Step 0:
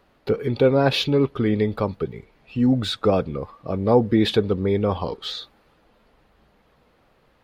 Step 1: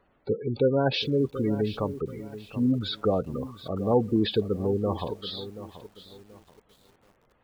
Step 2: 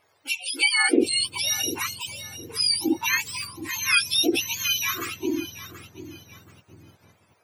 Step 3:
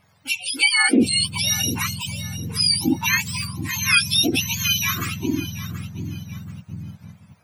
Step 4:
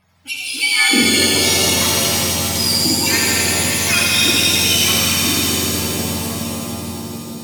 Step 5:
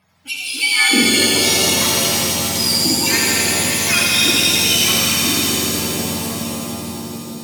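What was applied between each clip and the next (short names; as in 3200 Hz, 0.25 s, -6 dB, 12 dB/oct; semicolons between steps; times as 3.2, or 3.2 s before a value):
spectral gate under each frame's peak -20 dB strong; lo-fi delay 0.731 s, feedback 35%, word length 7-bit, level -13.5 dB; gain -5.5 dB
spectrum mirrored in octaves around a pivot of 1100 Hz; notch 2900 Hz, Q 20; gain +6.5 dB
resonant low shelf 260 Hz +11 dB, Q 3; gain +3.5 dB
on a send: thinning echo 83 ms, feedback 82%, high-pass 710 Hz, level -4 dB; on the sum: shimmer reverb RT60 3.8 s, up +7 st, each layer -2 dB, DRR -1 dB; gain -2 dB
HPF 110 Hz 12 dB/oct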